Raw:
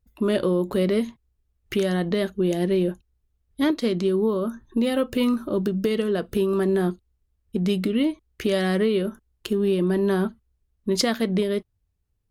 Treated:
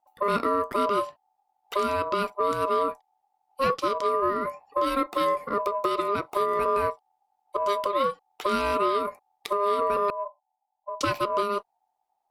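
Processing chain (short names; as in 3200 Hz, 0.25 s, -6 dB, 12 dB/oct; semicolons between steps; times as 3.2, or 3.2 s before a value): 10.1–11.01 ladder low-pass 230 Hz, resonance 40%; ring modulator 810 Hz; added harmonics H 2 -26 dB, 7 -39 dB, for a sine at -11 dBFS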